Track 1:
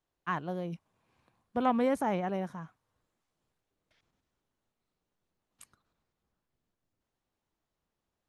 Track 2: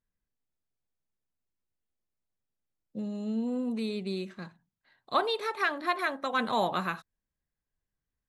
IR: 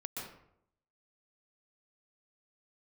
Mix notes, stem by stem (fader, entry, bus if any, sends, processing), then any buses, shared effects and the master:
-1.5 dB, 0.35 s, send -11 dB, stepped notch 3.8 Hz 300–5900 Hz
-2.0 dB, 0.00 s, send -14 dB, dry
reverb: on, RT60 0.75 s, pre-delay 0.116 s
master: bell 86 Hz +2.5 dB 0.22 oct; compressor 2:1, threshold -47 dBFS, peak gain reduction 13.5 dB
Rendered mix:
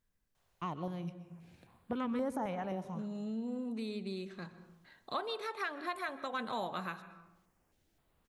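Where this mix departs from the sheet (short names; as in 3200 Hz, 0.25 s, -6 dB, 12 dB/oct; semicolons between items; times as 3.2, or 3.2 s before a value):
stem 1 -1.5 dB -> +8.5 dB; stem 2 -2.0 dB -> +4.0 dB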